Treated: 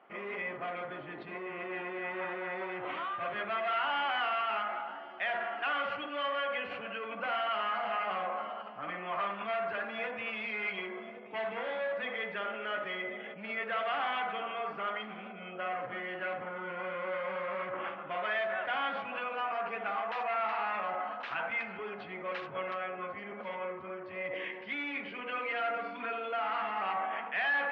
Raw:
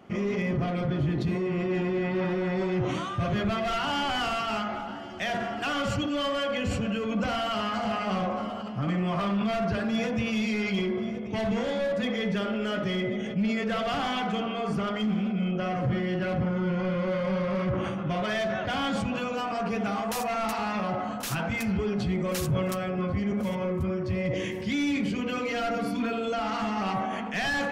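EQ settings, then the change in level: dynamic EQ 2200 Hz, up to +4 dB, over -42 dBFS, Q 0.94; BPF 740–3000 Hz; air absorption 350 m; 0.0 dB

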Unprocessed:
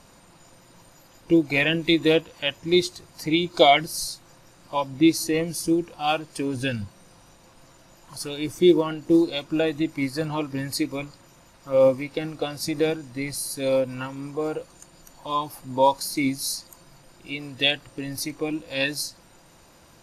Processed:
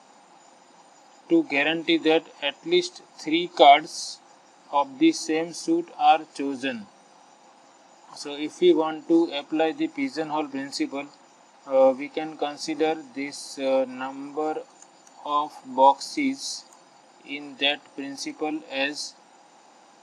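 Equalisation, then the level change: Chebyshev band-pass 230–7300 Hz, order 3; bell 800 Hz +13 dB 0.3 oct; -1.0 dB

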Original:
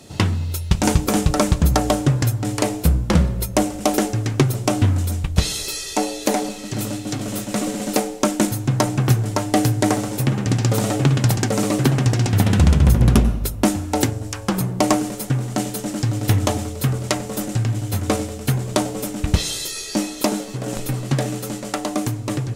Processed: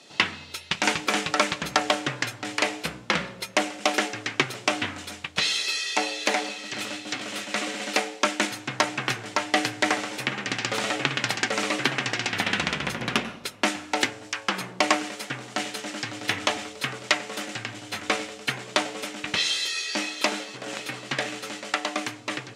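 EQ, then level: tilt +4 dB/oct; dynamic EQ 2100 Hz, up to +7 dB, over -37 dBFS, Q 0.88; BPF 170–3400 Hz; -4.0 dB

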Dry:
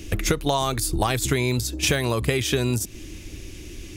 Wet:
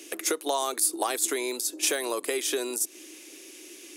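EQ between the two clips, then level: steep high-pass 310 Hz 36 dB/oct; bell 10000 Hz +9 dB 0.88 oct; dynamic EQ 2600 Hz, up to -4 dB, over -38 dBFS, Q 1.2; -4.0 dB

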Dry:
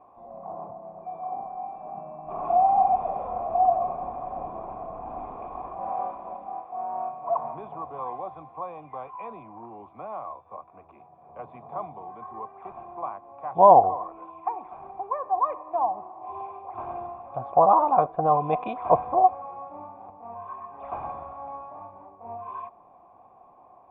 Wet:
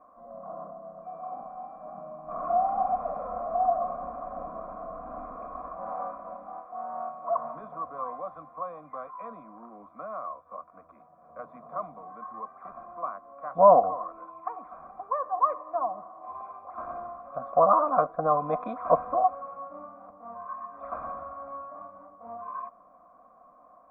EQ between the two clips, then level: bell 1300 Hz +7.5 dB 0.51 oct; fixed phaser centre 570 Hz, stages 8; 0.0 dB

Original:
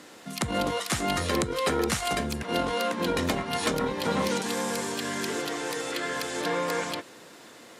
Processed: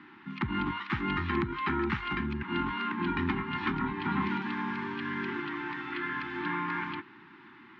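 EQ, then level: Chebyshev band-stop 380–830 Hz, order 4; ladder low-pass 3200 Hz, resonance 20%; air absorption 160 m; +4.5 dB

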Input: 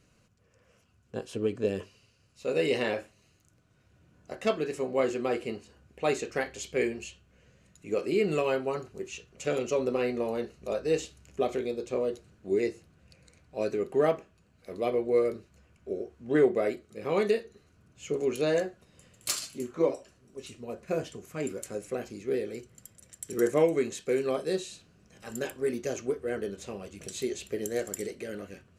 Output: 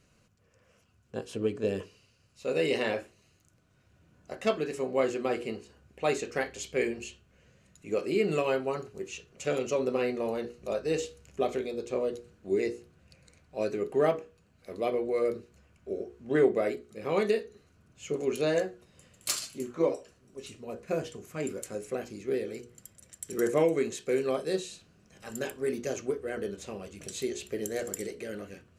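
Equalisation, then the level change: notches 60/120/180/240/300/360/420/480 Hz; 0.0 dB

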